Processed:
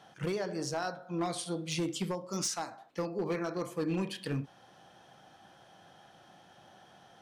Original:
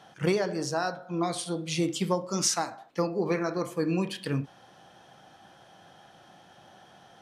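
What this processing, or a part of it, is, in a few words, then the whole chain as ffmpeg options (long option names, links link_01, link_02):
limiter into clipper: -af "alimiter=limit=-18.5dB:level=0:latency=1:release=407,asoftclip=type=hard:threshold=-23dB,volume=-3.5dB"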